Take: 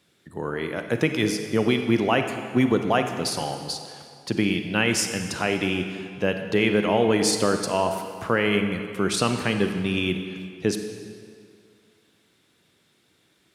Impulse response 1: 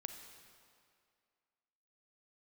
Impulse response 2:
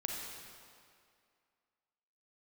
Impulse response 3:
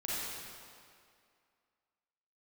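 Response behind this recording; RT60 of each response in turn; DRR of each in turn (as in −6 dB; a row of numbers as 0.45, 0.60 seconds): 1; 2.2, 2.3, 2.3 seconds; 6.0, −0.5, −8.0 decibels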